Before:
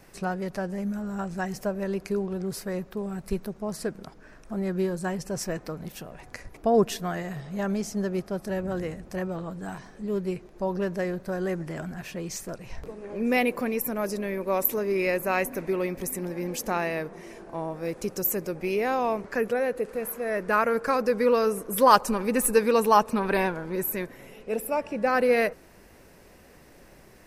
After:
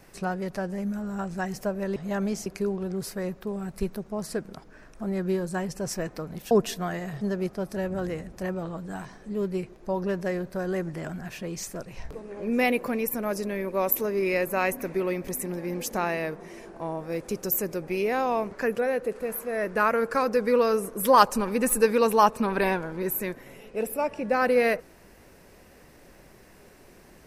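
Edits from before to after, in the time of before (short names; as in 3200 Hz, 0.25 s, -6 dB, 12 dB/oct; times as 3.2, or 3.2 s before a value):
6.01–6.74 cut
7.44–7.94 move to 1.96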